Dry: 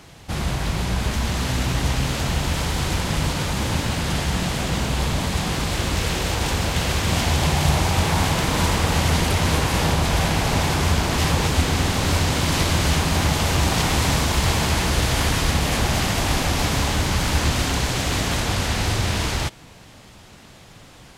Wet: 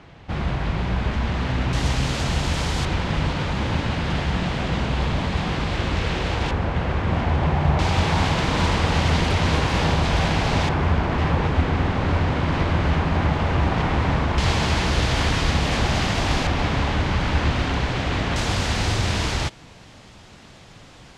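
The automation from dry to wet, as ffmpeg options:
ffmpeg -i in.wav -af "asetnsamples=nb_out_samples=441:pad=0,asendcmd='1.73 lowpass f 7000;2.85 lowpass f 3300;6.51 lowpass f 1700;7.79 lowpass f 4500;10.69 lowpass f 2000;14.38 lowpass f 5000;16.47 lowpass f 3000;18.36 lowpass f 7100',lowpass=2700" out.wav

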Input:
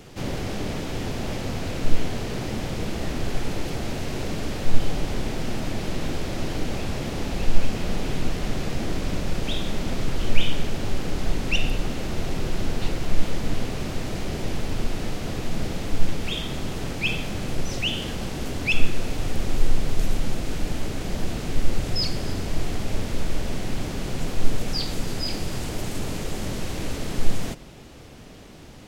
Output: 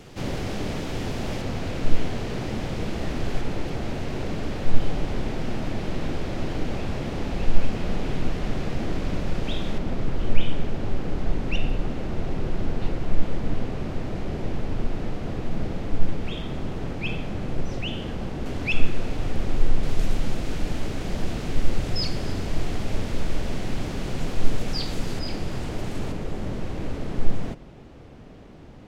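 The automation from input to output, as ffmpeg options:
ffmpeg -i in.wav -af "asetnsamples=nb_out_samples=441:pad=0,asendcmd='1.42 lowpass f 4000;3.41 lowpass f 2600;9.78 lowpass f 1300;18.46 lowpass f 2400;19.83 lowpass f 4900;25.19 lowpass f 2400;26.12 lowpass f 1200',lowpass=frequency=7700:poles=1" out.wav

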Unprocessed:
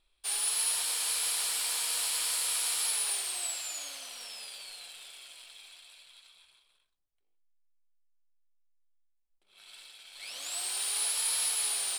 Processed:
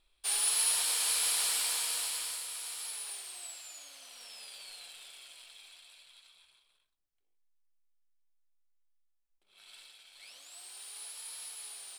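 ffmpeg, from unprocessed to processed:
ffmpeg -i in.wav -af "volume=8.5dB,afade=type=out:start_time=1.52:duration=0.95:silence=0.281838,afade=type=in:start_time=3.89:duration=0.85:silence=0.421697,afade=type=out:start_time=9.77:duration=0.69:silence=0.251189" out.wav

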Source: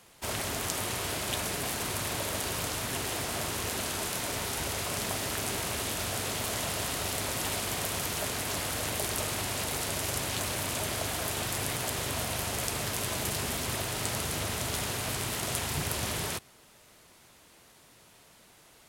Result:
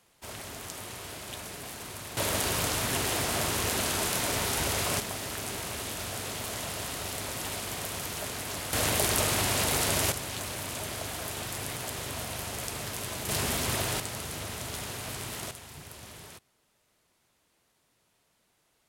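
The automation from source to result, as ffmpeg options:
ffmpeg -i in.wav -af "asetnsamples=nb_out_samples=441:pad=0,asendcmd='2.17 volume volume 4dB;5 volume volume -3dB;8.73 volume volume 5.5dB;10.12 volume volume -3.5dB;13.29 volume volume 3dB;14 volume volume -4.5dB;15.51 volume volume -14dB',volume=-8dB" out.wav

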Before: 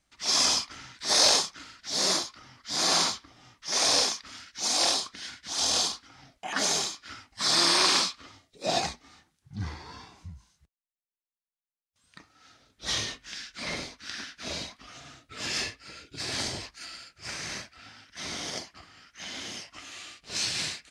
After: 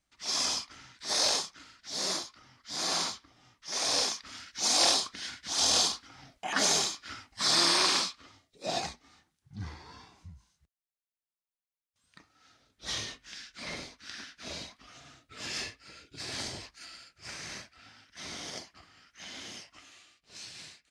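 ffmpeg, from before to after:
ffmpeg -i in.wav -af "volume=0.5dB,afade=type=in:start_time=3.84:duration=0.67:silence=0.446684,afade=type=out:start_time=7.08:duration=1.1:silence=0.501187,afade=type=out:start_time=19.57:duration=0.5:silence=0.298538" out.wav

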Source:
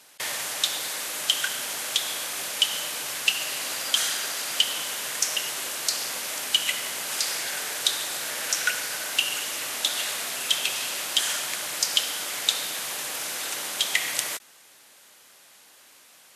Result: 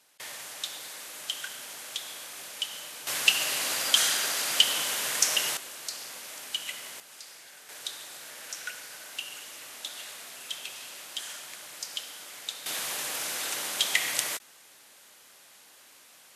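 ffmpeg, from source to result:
ffmpeg -i in.wav -af "asetnsamples=nb_out_samples=441:pad=0,asendcmd='3.07 volume volume 1dB;5.57 volume volume -10.5dB;7 volume volume -19.5dB;7.69 volume volume -13dB;12.66 volume volume -1.5dB',volume=-10.5dB" out.wav

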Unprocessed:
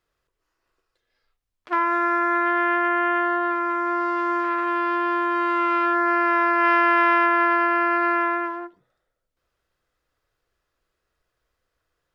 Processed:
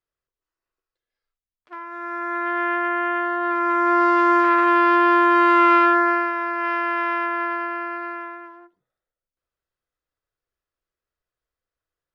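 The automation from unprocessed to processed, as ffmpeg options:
ffmpeg -i in.wav -af "volume=7dB,afade=type=in:start_time=1.9:duration=0.74:silence=0.237137,afade=type=in:start_time=3.36:duration=0.67:silence=0.375837,afade=type=out:start_time=5.72:duration=0.61:silence=0.237137,afade=type=out:start_time=7.44:duration=0.94:silence=0.421697" out.wav

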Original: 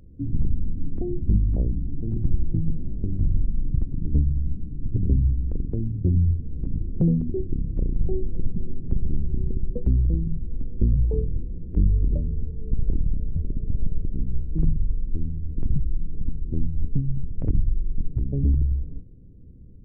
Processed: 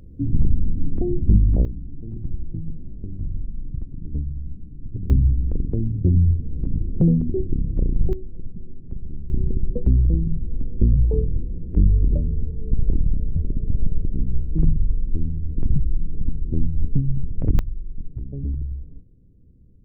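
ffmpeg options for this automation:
ffmpeg -i in.wav -af "asetnsamples=nb_out_samples=441:pad=0,asendcmd='1.65 volume volume -6dB;5.1 volume volume 3.5dB;8.13 volume volume -8dB;9.3 volume volume 3.5dB;17.59 volume volume -6dB',volume=5dB" out.wav

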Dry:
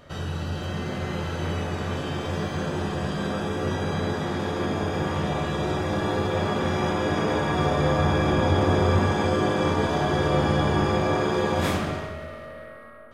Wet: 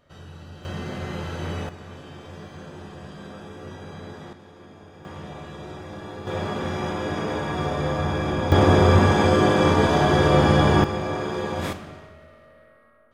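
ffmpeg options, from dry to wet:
ffmpeg -i in.wav -af "asetnsamples=nb_out_samples=441:pad=0,asendcmd='0.65 volume volume -2dB;1.69 volume volume -12dB;4.33 volume volume -20dB;5.05 volume volume -11.5dB;6.27 volume volume -3dB;8.52 volume volume 5dB;10.84 volume volume -4dB;11.73 volume volume -12dB',volume=-12dB" out.wav

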